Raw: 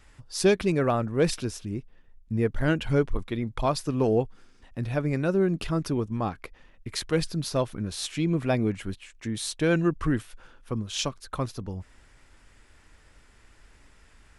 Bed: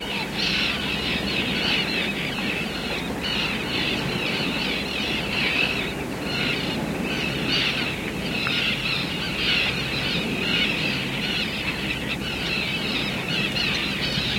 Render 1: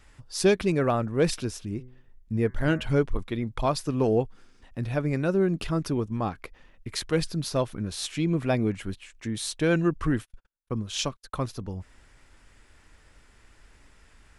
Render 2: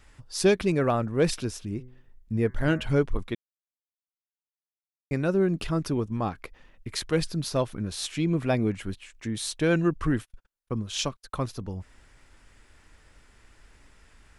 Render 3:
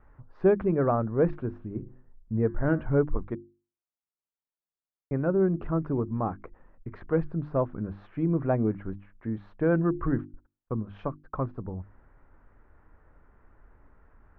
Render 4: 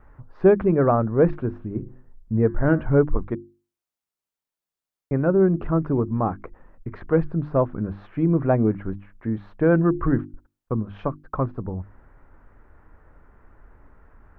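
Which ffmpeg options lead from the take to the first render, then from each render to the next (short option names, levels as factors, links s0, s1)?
-filter_complex "[0:a]asettb=1/sr,asplit=3[s0][s1][s2];[s0]atrim=end=1.664[s3];[s1]atrim=start=1.66:end=2.87,asetpts=PTS-STARTPTS,afade=t=in:d=0.004:c=qsin,afade=t=out:st=1.206:d=0.004:c=qsin,bandreject=f=126.5:t=h:w=4,bandreject=f=253:t=h:w=4,bandreject=f=379.5:t=h:w=4,bandreject=f=506:t=h:w=4,bandreject=f=632.5:t=h:w=4,bandreject=f=759:t=h:w=4,bandreject=f=885.5:t=h:w=4,bandreject=f=1012:t=h:w=4,bandreject=f=1138.5:t=h:w=4,bandreject=f=1265:t=h:w=4,bandreject=f=1391.5:t=h:w=4,bandreject=f=1518:t=h:w=4,bandreject=f=1644.5:t=h:w=4,bandreject=f=1771:t=h:w=4,bandreject=f=1897.5:t=h:w=4,bandreject=f=2024:t=h:w=4,bandreject=f=2150.5:t=h:w=4[s4];[s2]atrim=start=2.866[s5];[s3][s4]acrossfade=d=0.004:c1=hsin:c2=qsin[s6];[s6][s5]acrossfade=d=0.004:c1=qsin:c2=hsin,asettb=1/sr,asplit=3[s7][s8][s9];[s7]atrim=end=10.124[s10];[s8]atrim=start=10.12:end=11.53,asetpts=PTS-STARTPTS,afade=t=in:d=0.004:c=qsin,afade=t=out:st=1.406:d=0.004:c=qsin,agate=range=0.00447:threshold=0.00631:ratio=16:release=100:detection=peak[s11];[s9]atrim=start=11.526[s12];[s10][s11]acrossfade=d=0.004:c1=hsin:c2=qsin[s13];[s13][s12]acrossfade=d=0.004:c1=qsin:c2=hsin"
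-filter_complex "[0:a]asplit=3[s0][s1][s2];[s0]atrim=end=3.35,asetpts=PTS-STARTPTS,afade=t=out:st=3.346:d=0.004:c=hsin[s3];[s1]atrim=start=3.35:end=5.11,asetpts=PTS-STARTPTS,volume=0[s4];[s2]atrim=start=5.11,asetpts=PTS-STARTPTS,afade=t=in:d=0.004:c=hsin[s5];[s3][s4][s5]concat=n=3:v=0:a=1"
-af "lowpass=f=1400:w=0.5412,lowpass=f=1400:w=1.3066,bandreject=f=50:t=h:w=6,bandreject=f=100:t=h:w=6,bandreject=f=150:t=h:w=6,bandreject=f=200:t=h:w=6,bandreject=f=250:t=h:w=6,bandreject=f=300:t=h:w=6,bandreject=f=350:t=h:w=6"
-af "volume=2"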